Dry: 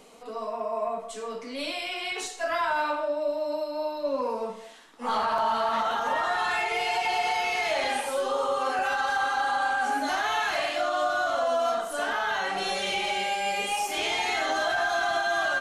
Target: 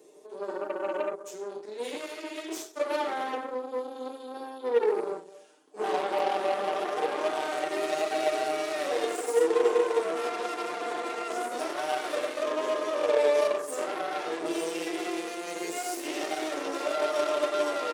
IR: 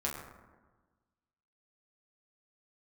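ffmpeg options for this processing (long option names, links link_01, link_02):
-af "highshelf=frequency=12000:gain=10,asetrate=38367,aresample=44100,equalizer=frequency=2100:width=0.36:gain=-10.5,aecho=1:1:6.6:0.85,aeval=exprs='0.133*(cos(1*acos(clip(val(0)/0.133,-1,1)))-cos(1*PI/2))+0.0266*(cos(3*acos(clip(val(0)/0.133,-1,1)))-cos(3*PI/2))+0.0119*(cos(8*acos(clip(val(0)/0.133,-1,1)))-cos(8*PI/2))':channel_layout=same,highpass=frequency=370:width_type=q:width=4,volume=1.5dB"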